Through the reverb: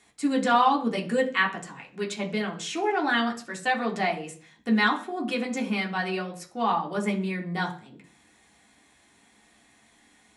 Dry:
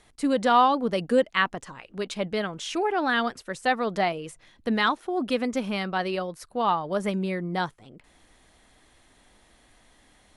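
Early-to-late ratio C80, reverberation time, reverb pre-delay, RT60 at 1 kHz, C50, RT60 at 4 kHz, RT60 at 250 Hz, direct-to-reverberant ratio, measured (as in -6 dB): 17.5 dB, 0.45 s, 3 ms, 0.40 s, 13.0 dB, 0.55 s, 0.55 s, -2.0 dB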